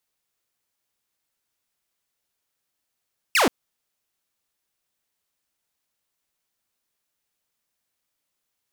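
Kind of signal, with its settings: laser zap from 2900 Hz, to 210 Hz, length 0.13 s saw, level -13 dB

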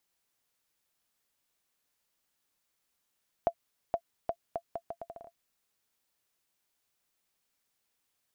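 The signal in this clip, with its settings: bouncing ball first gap 0.47 s, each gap 0.75, 679 Hz, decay 69 ms -15.5 dBFS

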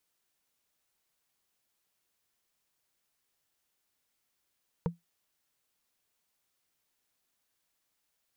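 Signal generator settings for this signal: wood hit, lowest mode 170 Hz, modes 3, decay 0.16 s, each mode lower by 3 dB, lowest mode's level -23 dB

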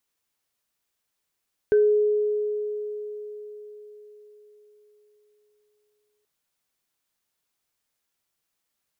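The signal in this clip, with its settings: sine partials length 4.53 s, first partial 420 Hz, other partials 1540 Hz, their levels -16.5 dB, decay 4.60 s, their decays 0.29 s, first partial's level -14 dB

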